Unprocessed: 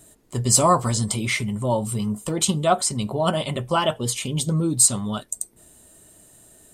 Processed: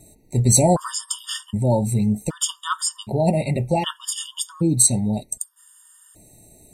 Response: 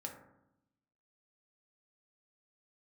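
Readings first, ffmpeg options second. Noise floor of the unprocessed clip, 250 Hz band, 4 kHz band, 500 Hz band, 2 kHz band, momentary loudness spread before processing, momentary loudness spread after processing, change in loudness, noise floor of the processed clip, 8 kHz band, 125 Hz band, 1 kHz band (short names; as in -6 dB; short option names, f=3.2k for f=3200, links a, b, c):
-56 dBFS, +2.5 dB, -1.0 dB, +0.5 dB, -6.0 dB, 12 LU, 12 LU, +0.5 dB, -56 dBFS, +0.5 dB, +3.0 dB, -3.5 dB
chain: -af "bass=f=250:g=5,treble=f=4k:g=1,afftfilt=real='re*gt(sin(2*PI*0.65*pts/sr)*(1-2*mod(floor(b*sr/1024/930),2)),0)':imag='im*gt(sin(2*PI*0.65*pts/sr)*(1-2*mod(floor(b*sr/1024/930),2)),0)':win_size=1024:overlap=0.75,volume=2dB"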